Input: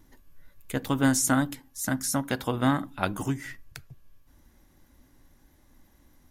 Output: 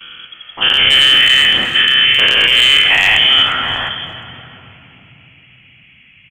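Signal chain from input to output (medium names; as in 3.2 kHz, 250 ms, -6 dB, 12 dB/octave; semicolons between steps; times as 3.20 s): every event in the spectrogram widened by 240 ms; gate with hold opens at -41 dBFS; high-pass 56 Hz 6 dB/octave; in parallel at -9 dB: saturation -17.5 dBFS, distortion -11 dB; on the sum: band noise 340–1200 Hz -61 dBFS; frequency inversion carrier 3.3 kHz; hard clipper -11 dBFS, distortion -20 dB; feedback delay 354 ms, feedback 32%, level -18 dB; on a send at -9.5 dB: reverberation RT60 3.5 s, pre-delay 47 ms; on the sum: loudness maximiser +15 dB; endings held to a fixed fall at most 600 dB/s; trim -1 dB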